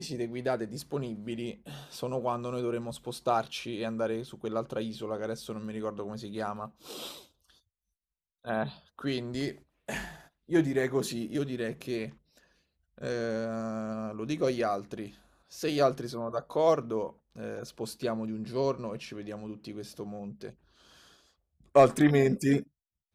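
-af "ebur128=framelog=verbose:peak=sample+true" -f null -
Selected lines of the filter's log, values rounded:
Integrated loudness:
  I:         -31.8 LUFS
  Threshold: -42.5 LUFS
Loudness range:
  LRA:         8.4 LU
  Threshold: -53.5 LUFS
  LRA low:   -38.2 LUFS
  LRA high:  -29.9 LUFS
Sample peak:
  Peak:      -10.0 dBFS
True peak:
  Peak:      -10.0 dBFS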